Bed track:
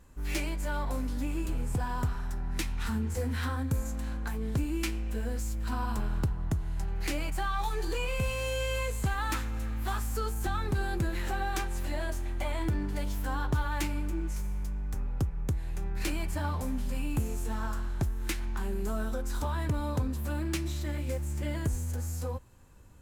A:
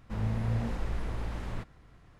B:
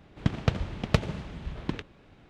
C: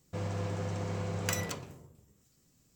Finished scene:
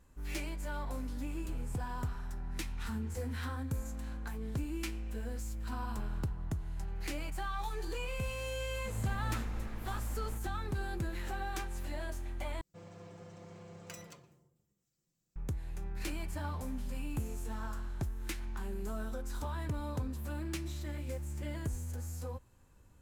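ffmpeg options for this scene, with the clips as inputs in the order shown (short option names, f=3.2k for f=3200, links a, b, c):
-filter_complex "[0:a]volume=-6.5dB[a];[3:a]aecho=1:1:5.8:0.56[b];[a]asplit=2[c][d];[c]atrim=end=12.614[e];[b]atrim=end=2.75,asetpts=PTS-STARTPTS,volume=-16.5dB[f];[d]atrim=start=15.356[g];[1:a]atrim=end=2.19,asetpts=PTS-STARTPTS,volume=-9dB,afade=t=in:d=0.004:c=hsin,afade=t=out:st=2.186:d=0.004:c=hsin,adelay=8750[h];[e][f]acrossfade=d=0.004:c1=hsin:c2=hsin[i];[i][g]acrossfade=d=0.004:c1=hsin:c2=hsin[j];[j][h]amix=inputs=2:normalize=0"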